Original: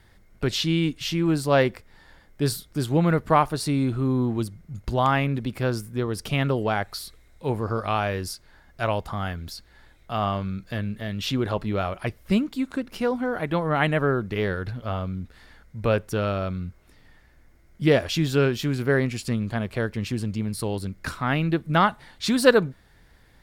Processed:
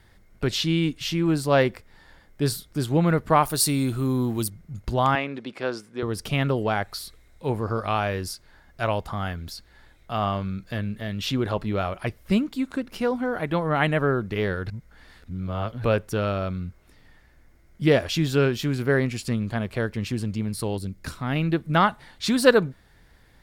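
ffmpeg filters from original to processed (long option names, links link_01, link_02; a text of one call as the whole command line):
ffmpeg -i in.wav -filter_complex "[0:a]asettb=1/sr,asplit=3[link_01][link_02][link_03];[link_01]atrim=end=3.434[link_04];[link_02]atrim=start=3.43:end=4.5,asetpts=PTS-STARTPTS,afade=type=in:duration=0.004:curve=qsin,afade=type=out:start_time=1.066:duration=0.004:curve=qsin,aemphasis=mode=production:type=75fm[link_05];[link_03]atrim=start=4.496[link_06];[link_04][link_05]acrossfade=duration=0.004:curve1=hsin:curve2=qsin[link_07];[link_07][link_06]acrossfade=duration=0.004:curve1=qsin:curve2=hsin,asettb=1/sr,asplit=3[link_08][link_09][link_10];[link_08]atrim=end=5.154[link_11];[link_09]atrim=start=5.15:end=6.03,asetpts=PTS-STARTPTS,afade=type=in:duration=0.004:curve=qsin,afade=type=out:start_time=0.876:duration=0.004:curve=qsin,highpass=330,lowpass=5600[link_12];[link_10]atrim=start=6.026[link_13];[link_11][link_12]acrossfade=duration=0.004:curve1=hsin:curve2=qsin[link_14];[link_14][link_13]acrossfade=duration=0.004:curve1=qsin:curve2=hsin,asettb=1/sr,asplit=3[link_15][link_16][link_17];[link_15]atrim=end=20.774[link_18];[link_16]atrim=start=20.77:end=21.36,asetpts=PTS-STARTPTS,afade=type=in:duration=0.004:curve=qsin,afade=type=out:start_time=0.586:duration=0.004:curve=qsin,equalizer=frequency=1300:width_type=o:width=2.3:gain=-7.5[link_19];[link_17]atrim=start=21.356[link_20];[link_18][link_19]acrossfade=duration=0.004:curve1=hsin:curve2=qsin[link_21];[link_21][link_20]acrossfade=duration=0.004:curve1=qsin:curve2=hsin,asplit=3[link_22][link_23][link_24];[link_22]atrim=end=14.702[link_25];[link_23]atrim=start=14.698:end=15.842,asetpts=PTS-STARTPTS,areverse[link_26];[link_24]atrim=start=15.838[link_27];[link_25][link_26]acrossfade=duration=0.004:curve1=hsin:curve2=hsin[link_28];[link_28][link_27]acrossfade=duration=0.004:curve1=hsin:curve2=hsin" out.wav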